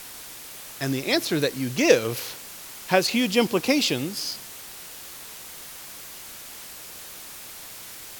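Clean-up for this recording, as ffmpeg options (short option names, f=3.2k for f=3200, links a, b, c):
-af "afwtdn=0.01"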